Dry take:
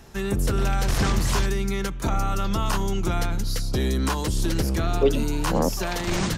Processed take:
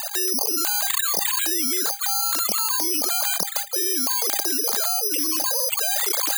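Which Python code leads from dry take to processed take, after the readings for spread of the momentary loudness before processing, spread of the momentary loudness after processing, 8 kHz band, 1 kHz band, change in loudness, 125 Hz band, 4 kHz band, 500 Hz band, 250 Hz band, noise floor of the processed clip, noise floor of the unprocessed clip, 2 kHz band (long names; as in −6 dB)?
5 LU, 1 LU, +12.5 dB, −1.0 dB, +5.0 dB, below −30 dB, +8.0 dB, −6.5 dB, −8.0 dB, −30 dBFS, −29 dBFS, +1.0 dB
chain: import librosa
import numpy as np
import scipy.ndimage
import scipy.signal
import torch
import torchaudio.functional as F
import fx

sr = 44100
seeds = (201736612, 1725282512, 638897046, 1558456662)

y = fx.sine_speech(x, sr)
y = fx.spec_box(y, sr, start_s=0.31, length_s=0.26, low_hz=1200.0, high_hz=2600.0, gain_db=-23)
y = scipy.signal.sosfilt(scipy.signal.butter(2, 440.0, 'highpass', fs=sr, output='sos'), y)
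y = fx.dereverb_blind(y, sr, rt60_s=1.0)
y = fx.rider(y, sr, range_db=3, speed_s=2.0)
y = fx.air_absorb(y, sr, metres=290.0)
y = fx.comb_fb(y, sr, f0_hz=800.0, decay_s=0.18, harmonics='all', damping=0.0, mix_pct=70)
y = (np.kron(y[::8], np.eye(8)[0]) * 8)[:len(y)]
y = fx.env_flatten(y, sr, amount_pct=100)
y = y * 10.0 ** (-15.0 / 20.0)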